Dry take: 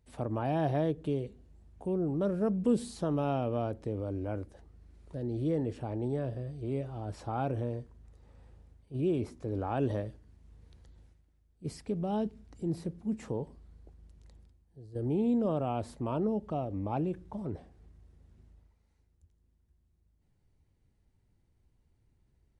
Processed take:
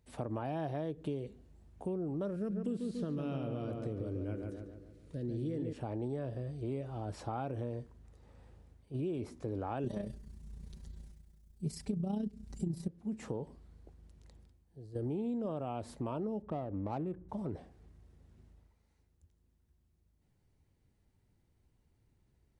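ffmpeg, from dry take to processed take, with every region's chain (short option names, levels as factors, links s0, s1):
-filter_complex "[0:a]asettb=1/sr,asplit=3[s0][s1][s2];[s0]atrim=end=2.364[s3];[s1]atrim=start=2.36:end=5.73,asetpts=PTS-STARTPTS,afade=t=in:d=0.004:c=qsin,afade=t=out:st=3.366:d=0.004:c=qsin,acrossover=split=3400[s4][s5];[s5]acompressor=threshold=0.00158:ratio=4:attack=1:release=60[s6];[s4][s6]amix=inputs=2:normalize=0,equalizer=f=840:t=o:w=1:g=-14,asplit=2[s7][s8];[s8]adelay=143,lowpass=f=2200:p=1,volume=0.596,asplit=2[s9][s10];[s10]adelay=143,lowpass=f=2200:p=1,volume=0.53,asplit=2[s11][s12];[s12]adelay=143,lowpass=f=2200:p=1,volume=0.53,asplit=2[s13][s14];[s14]adelay=143,lowpass=f=2200:p=1,volume=0.53,asplit=2[s15][s16];[s16]adelay=143,lowpass=f=2200:p=1,volume=0.53,asplit=2[s17][s18];[s18]adelay=143,lowpass=f=2200:p=1,volume=0.53,asplit=2[s19][s20];[s20]adelay=143,lowpass=f=2200:p=1,volume=0.53[s21];[s7][s9][s11][s13][s15][s17][s19][s21]amix=inputs=8:normalize=0,atrim=end_sample=148617[s22];[s2]atrim=start=5.726[s23];[s3][s22]acrossfade=d=0.004:c1=hsin:c2=qsin[s24];[s24][s23]acrossfade=d=0.004:c1=qsin:c2=hsin,asettb=1/sr,asplit=3[s25][s26][s27];[s25]atrim=end=9.844[s28];[s26]atrim=start=9.84:end=12.88,asetpts=PTS-STARTPTS,afade=t=in:d=0.004:c=qsin,afade=t=out:st=3.036:d=0.004:c=qsin,bass=f=250:g=12,treble=f=4000:g=10,aecho=1:1:5.1:0.91,atrim=end_sample=134064,tremolo=f=30:d=0.571[s29];[s27]atrim=start=12.876[s30];[s28][s29]acrossfade=d=0.004:c1=hsin:c2=qsin[s31];[s31][s30]acrossfade=d=0.004:c1=qsin:c2=hsin,asettb=1/sr,asplit=3[s32][s33][s34];[s32]atrim=end=16.424[s35];[s33]atrim=start=16.42:end=17.29,asetpts=PTS-STARTPTS,afade=t=in:d=0.004:c=qsin,afade=t=out:st=0.866:d=0.004:c=qsin,highshelf=f=6800:t=q:w=3:g=13,adynamicsmooth=sensitivity=7.5:basefreq=1100[s36];[s34]atrim=start=17.286[s37];[s35][s36]acrossfade=d=0.004:c1=hsin:c2=qsin[s38];[s38][s37]acrossfade=d=0.004:c1=qsin:c2=hsin,acompressor=threshold=0.02:ratio=6,lowshelf=f=67:g=-6.5,volume=1.12"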